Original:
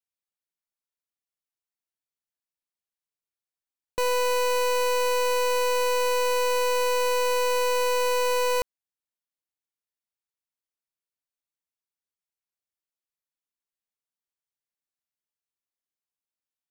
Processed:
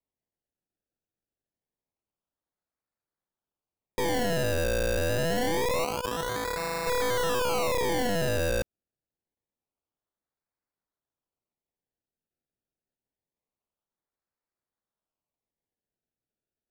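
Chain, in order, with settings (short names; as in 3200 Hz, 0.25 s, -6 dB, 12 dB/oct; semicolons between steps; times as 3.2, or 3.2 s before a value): 5.84–6.87 HPF 1000 Hz 6 dB/oct; decimation with a swept rate 28×, swing 100% 0.26 Hz; gain -3 dB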